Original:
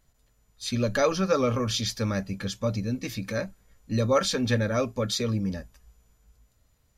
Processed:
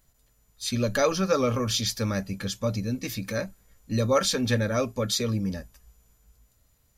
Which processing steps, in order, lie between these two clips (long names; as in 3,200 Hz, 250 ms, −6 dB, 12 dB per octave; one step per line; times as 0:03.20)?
high-shelf EQ 8,700 Hz +10.5 dB